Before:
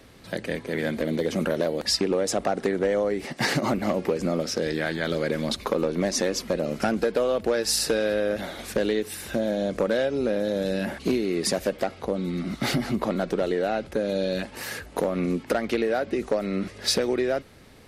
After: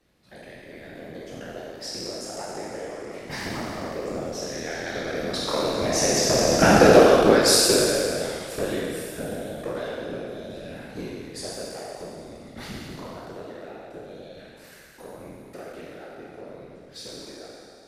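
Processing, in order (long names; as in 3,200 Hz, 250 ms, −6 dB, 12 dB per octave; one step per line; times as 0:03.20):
peak hold with a decay on every bin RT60 2.65 s
source passing by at 0:06.97, 11 m/s, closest 4.1 metres
random phases in short frames
level +7 dB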